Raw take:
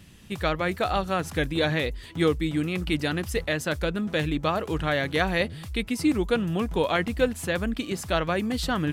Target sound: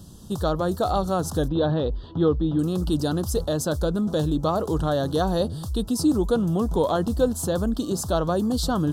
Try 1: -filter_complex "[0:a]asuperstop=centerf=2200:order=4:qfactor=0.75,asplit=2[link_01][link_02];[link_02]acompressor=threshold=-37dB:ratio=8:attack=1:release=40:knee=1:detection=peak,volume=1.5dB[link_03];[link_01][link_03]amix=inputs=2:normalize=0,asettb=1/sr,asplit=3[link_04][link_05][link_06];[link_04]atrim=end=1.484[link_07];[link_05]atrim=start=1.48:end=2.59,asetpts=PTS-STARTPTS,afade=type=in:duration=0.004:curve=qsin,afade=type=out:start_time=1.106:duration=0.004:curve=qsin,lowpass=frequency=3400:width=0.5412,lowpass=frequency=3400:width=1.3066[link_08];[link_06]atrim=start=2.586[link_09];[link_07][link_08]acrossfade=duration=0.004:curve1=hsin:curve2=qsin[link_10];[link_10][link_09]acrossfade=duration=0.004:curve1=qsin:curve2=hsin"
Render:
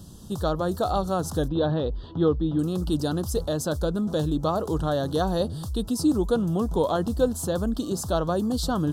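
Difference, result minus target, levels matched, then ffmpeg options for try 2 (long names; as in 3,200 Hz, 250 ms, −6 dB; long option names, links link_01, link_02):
downward compressor: peak gain reduction +6.5 dB
-filter_complex "[0:a]asuperstop=centerf=2200:order=4:qfactor=0.75,asplit=2[link_01][link_02];[link_02]acompressor=threshold=-29.5dB:ratio=8:attack=1:release=40:knee=1:detection=peak,volume=1.5dB[link_03];[link_01][link_03]amix=inputs=2:normalize=0,asettb=1/sr,asplit=3[link_04][link_05][link_06];[link_04]atrim=end=1.484[link_07];[link_05]atrim=start=1.48:end=2.59,asetpts=PTS-STARTPTS,afade=type=in:duration=0.004:curve=qsin,afade=type=out:start_time=1.106:duration=0.004:curve=qsin,lowpass=frequency=3400:width=0.5412,lowpass=frequency=3400:width=1.3066[link_08];[link_06]atrim=start=2.586[link_09];[link_07][link_08]acrossfade=duration=0.004:curve1=hsin:curve2=qsin[link_10];[link_10][link_09]acrossfade=duration=0.004:curve1=qsin:curve2=hsin"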